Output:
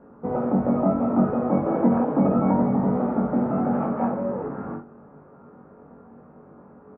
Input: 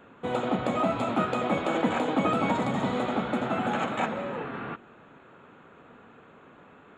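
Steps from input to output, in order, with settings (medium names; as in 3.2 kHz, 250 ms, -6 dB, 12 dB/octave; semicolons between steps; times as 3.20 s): Bessel low-pass 780 Hz, order 4; doubling 21 ms -5 dB; on a send: reverberation, pre-delay 3 ms, DRR 3 dB; on the sum: trim +3 dB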